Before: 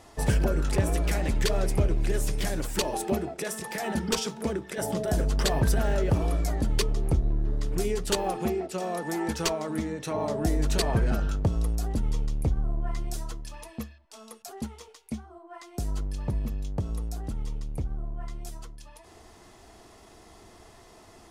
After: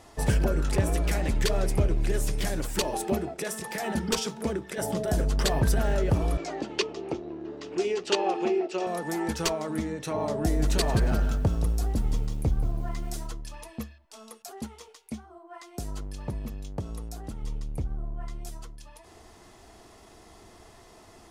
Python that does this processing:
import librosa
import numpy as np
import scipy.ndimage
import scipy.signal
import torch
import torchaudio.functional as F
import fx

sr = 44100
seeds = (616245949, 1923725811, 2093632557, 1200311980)

y = fx.cabinet(x, sr, low_hz=330.0, low_slope=12, high_hz=6400.0, hz=(350.0, 820.0, 2700.0), db=(9, 3, 7), at=(6.37, 8.87))
y = fx.echo_crushed(y, sr, ms=178, feedback_pct=35, bits=8, wet_db=-10.5, at=(10.36, 13.27))
y = fx.low_shelf(y, sr, hz=160.0, db=-6.5, at=(14.3, 17.43))